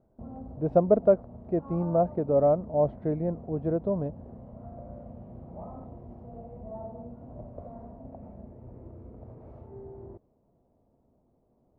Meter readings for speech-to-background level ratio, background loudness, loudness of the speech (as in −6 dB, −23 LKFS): 18.5 dB, −45.0 LKFS, −26.5 LKFS